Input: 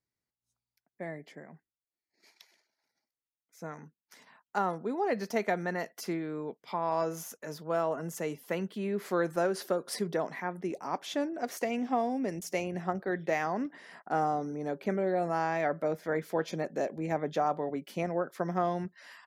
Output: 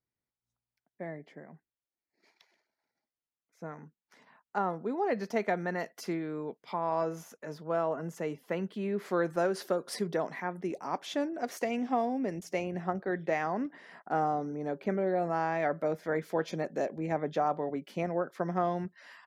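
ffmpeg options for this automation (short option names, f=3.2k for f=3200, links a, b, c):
-af "asetnsamples=n=441:p=0,asendcmd='4.86 lowpass f 3600;5.73 lowpass f 6200;6.73 lowpass f 2500;8.63 lowpass f 4100;9.39 lowpass f 7900;12.05 lowpass f 3200;15.62 lowpass f 7400;16.86 lowpass f 4000',lowpass=f=1.8k:p=1"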